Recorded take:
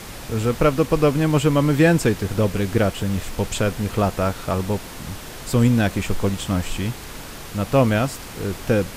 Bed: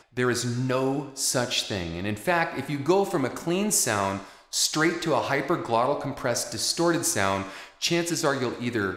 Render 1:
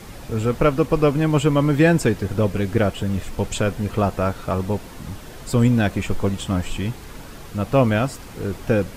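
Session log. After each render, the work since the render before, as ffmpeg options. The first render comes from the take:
-af "afftdn=nr=7:nf=-36"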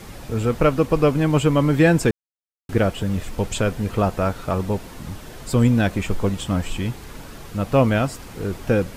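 -filter_complex "[0:a]asplit=3[s0][s1][s2];[s0]atrim=end=2.11,asetpts=PTS-STARTPTS,afade=t=out:st=2.106:d=0.004:c=hsin[s3];[s1]atrim=start=2.11:end=2.69,asetpts=PTS-STARTPTS,volume=0[s4];[s2]atrim=start=2.69,asetpts=PTS-STARTPTS,afade=t=in:d=0.004:c=hsin[s5];[s3][s4][s5]concat=n=3:v=0:a=1"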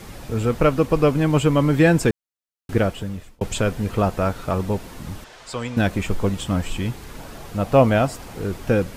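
-filter_complex "[0:a]asettb=1/sr,asplit=3[s0][s1][s2];[s0]atrim=end=5.244[s3];[s1]atrim=start=5.24:end=5.77,asetpts=PTS-STARTPTS,afade=t=in:d=0.004:c=qsin,afade=t=out:st=0.526:d=0.004:c=qsin,acrossover=split=550 7700:gain=0.158 1 0.1[s4][s5][s6];[s4][s5][s6]amix=inputs=3:normalize=0[s7];[s2]atrim=start=5.766[s8];[s3][s7]acrossfade=d=0.004:c1=hsin:c2=qsin[s9];[s9][s8]acrossfade=d=0.004:c1=qsin:c2=hsin,asettb=1/sr,asplit=3[s10][s11][s12];[s10]atrim=end=7.184[s13];[s11]atrim=start=7.18:end=8.4,asetpts=PTS-STARTPTS,afade=t=in:d=0.004:c=qsin,afade=t=out:st=1.216:d=0.004:c=qsin,equalizer=f=700:t=o:w=0.78:g=5.5[s14];[s12]atrim=start=8.396[s15];[s13][s14]acrossfade=d=0.004:c1=hsin:c2=qsin[s16];[s16][s15]acrossfade=d=0.004:c1=qsin:c2=hsin,asplit=2[s17][s18];[s17]atrim=end=3.41,asetpts=PTS-STARTPTS,afade=t=out:st=2.77:d=0.64[s19];[s18]atrim=start=3.41,asetpts=PTS-STARTPTS,afade=t=in:d=0.004:c=hsin[s20];[s19][s20]concat=n=2:v=0:a=1"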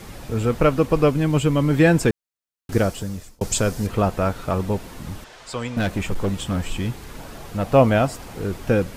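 -filter_complex "[0:a]asettb=1/sr,asplit=3[s0][s1][s2];[s0]atrim=end=1.104[s3];[s1]atrim=start=1.1:end=1.71,asetpts=PTS-STARTPTS,afade=t=in:d=0.004:c=qsin,afade=t=out:st=0.606:d=0.004:c=qsin,equalizer=f=910:w=0.53:g=-4.5[s4];[s2]atrim=start=1.706[s5];[s3][s4]acrossfade=d=0.004:c1=hsin:c2=qsin[s6];[s6][s5]acrossfade=d=0.004:c1=qsin:c2=hsin,asettb=1/sr,asplit=3[s7][s8][s9];[s7]atrim=end=2.724[s10];[s8]atrim=start=2.72:end=3.87,asetpts=PTS-STARTPTS,afade=t=in:d=0.004:c=qsin,afade=t=out:st=1.146:d=0.004:c=qsin,highshelf=f=4000:t=q:w=1.5:g=7[s11];[s9]atrim=start=3.866[s12];[s10][s11]acrossfade=d=0.004:c1=hsin:c2=qsin[s13];[s13][s12]acrossfade=d=0.004:c1=qsin:c2=hsin,asettb=1/sr,asplit=3[s14][s15][s16];[s14]atrim=end=5.734[s17];[s15]atrim=start=5.73:end=7.67,asetpts=PTS-STARTPTS,afade=t=in:d=0.004:c=qsin,afade=t=out:st=1.936:d=0.004:c=qsin,asoftclip=type=hard:threshold=0.141[s18];[s16]atrim=start=7.666[s19];[s17][s18]acrossfade=d=0.004:c1=hsin:c2=qsin[s20];[s20][s19]acrossfade=d=0.004:c1=qsin:c2=hsin"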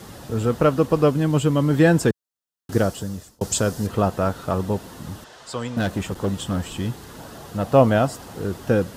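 -af "highpass=77,equalizer=f=2300:t=o:w=0.31:g=-9.5"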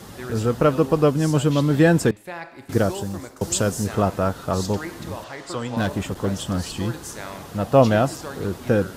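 -filter_complex "[1:a]volume=0.282[s0];[0:a][s0]amix=inputs=2:normalize=0"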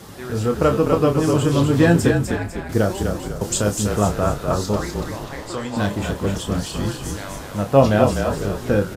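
-filter_complex "[0:a]asplit=2[s0][s1];[s1]adelay=29,volume=0.422[s2];[s0][s2]amix=inputs=2:normalize=0,asplit=6[s3][s4][s5][s6][s7][s8];[s4]adelay=250,afreqshift=-33,volume=0.562[s9];[s5]adelay=500,afreqshift=-66,volume=0.232[s10];[s6]adelay=750,afreqshift=-99,volume=0.0944[s11];[s7]adelay=1000,afreqshift=-132,volume=0.0389[s12];[s8]adelay=1250,afreqshift=-165,volume=0.0158[s13];[s3][s9][s10][s11][s12][s13]amix=inputs=6:normalize=0"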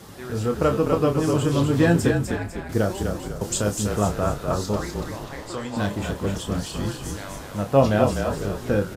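-af "volume=0.668"

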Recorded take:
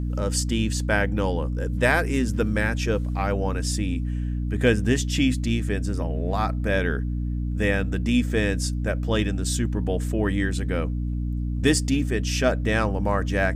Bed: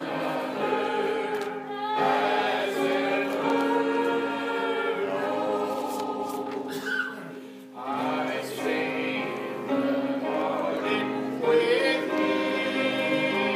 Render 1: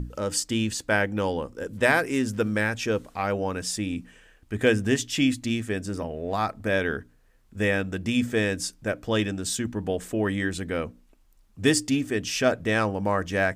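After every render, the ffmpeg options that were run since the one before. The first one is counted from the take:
-af "bandreject=f=60:t=h:w=6,bandreject=f=120:t=h:w=6,bandreject=f=180:t=h:w=6,bandreject=f=240:t=h:w=6,bandreject=f=300:t=h:w=6"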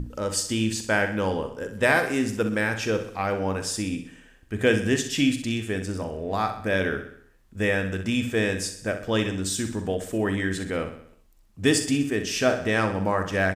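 -filter_complex "[0:a]asplit=2[s0][s1];[s1]adelay=42,volume=0.251[s2];[s0][s2]amix=inputs=2:normalize=0,asplit=2[s3][s4];[s4]aecho=0:1:63|126|189|252|315|378:0.316|0.164|0.0855|0.0445|0.0231|0.012[s5];[s3][s5]amix=inputs=2:normalize=0"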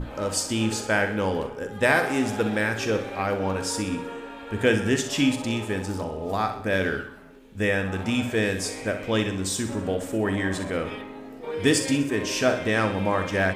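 -filter_complex "[1:a]volume=0.299[s0];[0:a][s0]amix=inputs=2:normalize=0"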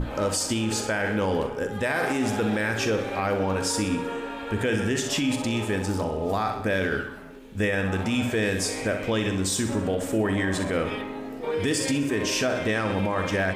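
-filter_complex "[0:a]asplit=2[s0][s1];[s1]acompressor=threshold=0.0282:ratio=6,volume=0.794[s2];[s0][s2]amix=inputs=2:normalize=0,alimiter=limit=0.158:level=0:latency=1:release=27"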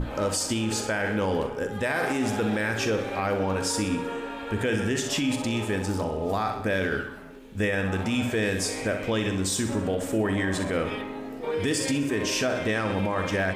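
-af "volume=0.891"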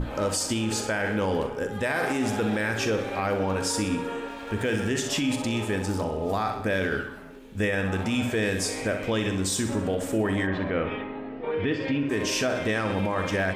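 -filter_complex "[0:a]asettb=1/sr,asplit=3[s0][s1][s2];[s0]atrim=end=4.284[s3];[s1]atrim=start=4.28:end=4.91,asetpts=PTS-STARTPTS,afade=t=in:d=0.004:c=qsin,afade=t=out:st=0.626:d=0.004:c=qsin,aeval=exprs='sgn(val(0))*max(abs(val(0))-0.00473,0)':c=same[s4];[s2]atrim=start=4.906[s5];[s3][s4]acrossfade=d=0.004:c1=hsin:c2=qsin[s6];[s6][s5]acrossfade=d=0.004:c1=qsin:c2=hsin,asplit=3[s7][s8][s9];[s7]afade=t=out:st=10.46:d=0.02[s10];[s8]lowpass=f=3100:w=0.5412,lowpass=f=3100:w=1.3066,afade=t=in:st=10.46:d=0.02,afade=t=out:st=12.09:d=0.02[s11];[s9]afade=t=in:st=12.09:d=0.02[s12];[s10][s11][s12]amix=inputs=3:normalize=0"

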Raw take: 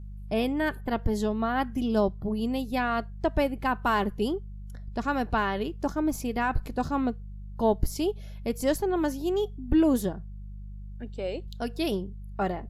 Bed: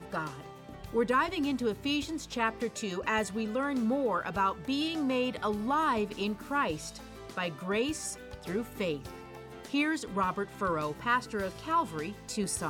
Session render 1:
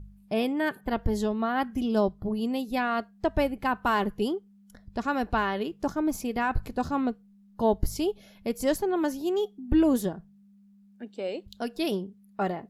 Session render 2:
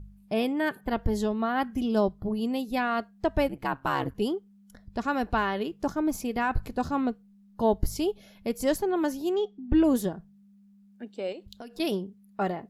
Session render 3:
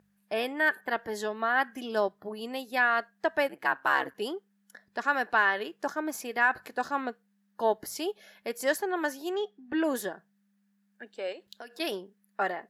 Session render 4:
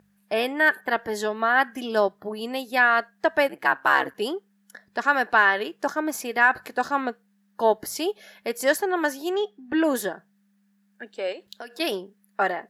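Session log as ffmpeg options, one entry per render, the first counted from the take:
-af "bandreject=f=50:t=h:w=4,bandreject=f=100:t=h:w=4,bandreject=f=150:t=h:w=4"
-filter_complex "[0:a]asplit=3[s0][s1][s2];[s0]afade=t=out:st=3.48:d=0.02[s3];[s1]aeval=exprs='val(0)*sin(2*PI*69*n/s)':c=same,afade=t=in:st=3.48:d=0.02,afade=t=out:st=4.13:d=0.02[s4];[s2]afade=t=in:st=4.13:d=0.02[s5];[s3][s4][s5]amix=inputs=3:normalize=0,asettb=1/sr,asplit=3[s6][s7][s8];[s6]atrim=end=9.354[s9];[s7]atrim=start=9.35:end=9.84,asetpts=PTS-STARTPTS,afade=t=in:d=0.004:c=qsin,afade=t=out:st=0.486:d=0.004:c=qsin,lowpass=4700[s10];[s8]atrim=start=9.836[s11];[s9][s10]acrossfade=d=0.004:c1=hsin:c2=qsin[s12];[s12][s11]acrossfade=d=0.004:c1=qsin:c2=hsin,asettb=1/sr,asplit=3[s13][s14][s15];[s13]atrim=end=11.324[s16];[s14]atrim=start=11.32:end=11.8,asetpts=PTS-STARTPTS,afade=t=in:d=0.004:c=qsin,afade=t=out:st=0.476:d=0.004:c=qsin,acompressor=threshold=0.0141:ratio=16:attack=3.2:release=140:knee=1:detection=peak[s17];[s15]atrim=start=11.796[s18];[s16][s17]acrossfade=d=0.004:c1=hsin:c2=qsin[s19];[s19][s18]acrossfade=d=0.004:c1=qsin:c2=hsin"
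-af "highpass=470,equalizer=f=1700:t=o:w=0.42:g=11"
-af "volume=2"

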